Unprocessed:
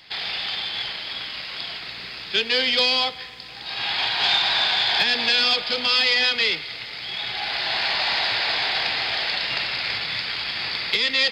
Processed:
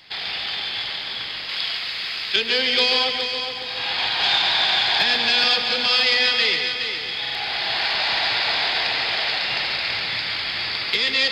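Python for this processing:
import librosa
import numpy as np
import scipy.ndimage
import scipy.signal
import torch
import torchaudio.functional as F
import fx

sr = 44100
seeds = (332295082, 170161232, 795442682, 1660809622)

p1 = fx.tilt_shelf(x, sr, db=-6.0, hz=750.0, at=(1.49, 2.36))
p2 = p1 + fx.echo_heads(p1, sr, ms=139, heads='first and third', feedback_pct=54, wet_db=-8, dry=0)
y = fx.buffer_glitch(p2, sr, at_s=(7.21,), block=2048, repeats=2)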